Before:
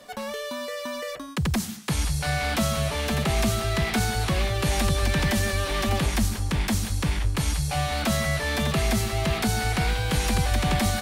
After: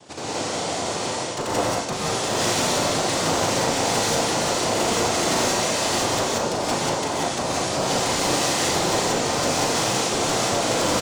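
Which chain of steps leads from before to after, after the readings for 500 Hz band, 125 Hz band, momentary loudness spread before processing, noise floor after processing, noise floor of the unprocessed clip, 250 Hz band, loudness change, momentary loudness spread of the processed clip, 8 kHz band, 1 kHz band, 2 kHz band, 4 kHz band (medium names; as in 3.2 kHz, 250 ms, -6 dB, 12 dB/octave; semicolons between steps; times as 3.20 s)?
+7.0 dB, -6.5 dB, 7 LU, -28 dBFS, -35 dBFS, +1.0 dB, +3.5 dB, 5 LU, +8.5 dB, +7.5 dB, +1.5 dB, +6.0 dB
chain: noise-vocoded speech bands 2; spectral gate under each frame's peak -25 dB strong; overload inside the chain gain 24 dB; doubling 37 ms -6.5 dB; gated-style reverb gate 210 ms rising, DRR -5.5 dB; trim -1 dB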